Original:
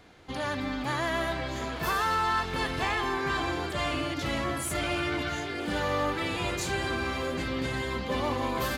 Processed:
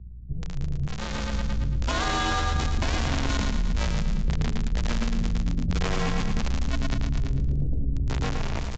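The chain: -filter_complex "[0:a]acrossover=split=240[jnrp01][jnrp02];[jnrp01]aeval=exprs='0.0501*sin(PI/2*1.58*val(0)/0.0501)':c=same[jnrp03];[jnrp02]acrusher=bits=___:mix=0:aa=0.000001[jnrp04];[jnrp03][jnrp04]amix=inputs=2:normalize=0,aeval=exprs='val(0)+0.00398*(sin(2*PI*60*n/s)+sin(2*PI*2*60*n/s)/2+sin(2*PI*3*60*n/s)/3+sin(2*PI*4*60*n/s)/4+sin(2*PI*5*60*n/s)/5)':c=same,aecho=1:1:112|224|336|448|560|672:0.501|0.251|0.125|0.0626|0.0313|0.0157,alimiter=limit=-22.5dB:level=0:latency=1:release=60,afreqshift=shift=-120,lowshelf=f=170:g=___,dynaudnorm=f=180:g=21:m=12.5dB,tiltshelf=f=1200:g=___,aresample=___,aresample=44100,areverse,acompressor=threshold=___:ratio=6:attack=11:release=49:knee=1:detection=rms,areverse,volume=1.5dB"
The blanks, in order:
3, 2, 3, 16000, -24dB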